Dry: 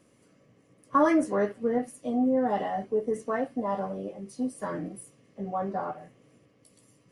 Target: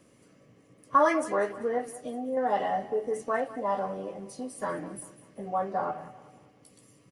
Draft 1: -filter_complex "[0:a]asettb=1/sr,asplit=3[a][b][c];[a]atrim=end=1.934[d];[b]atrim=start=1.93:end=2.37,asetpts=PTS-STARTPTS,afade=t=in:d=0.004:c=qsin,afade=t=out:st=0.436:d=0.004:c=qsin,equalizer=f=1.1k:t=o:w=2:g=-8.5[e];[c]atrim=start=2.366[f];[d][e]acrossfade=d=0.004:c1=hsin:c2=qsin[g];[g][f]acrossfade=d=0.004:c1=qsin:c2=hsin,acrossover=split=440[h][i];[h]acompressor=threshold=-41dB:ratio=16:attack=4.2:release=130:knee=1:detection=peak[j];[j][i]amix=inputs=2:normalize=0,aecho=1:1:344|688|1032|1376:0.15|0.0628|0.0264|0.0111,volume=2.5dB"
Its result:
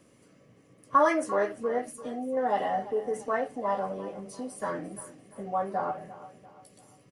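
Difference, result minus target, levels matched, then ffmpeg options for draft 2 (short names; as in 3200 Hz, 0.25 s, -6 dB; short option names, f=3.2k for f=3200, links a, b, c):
echo 0.15 s late
-filter_complex "[0:a]asettb=1/sr,asplit=3[a][b][c];[a]atrim=end=1.934[d];[b]atrim=start=1.93:end=2.37,asetpts=PTS-STARTPTS,afade=t=in:d=0.004:c=qsin,afade=t=out:st=0.436:d=0.004:c=qsin,equalizer=f=1.1k:t=o:w=2:g=-8.5[e];[c]atrim=start=2.366[f];[d][e]acrossfade=d=0.004:c1=hsin:c2=qsin[g];[g][f]acrossfade=d=0.004:c1=qsin:c2=hsin,acrossover=split=440[h][i];[h]acompressor=threshold=-41dB:ratio=16:attack=4.2:release=130:knee=1:detection=peak[j];[j][i]amix=inputs=2:normalize=0,aecho=1:1:194|388|582|776:0.15|0.0628|0.0264|0.0111,volume=2.5dB"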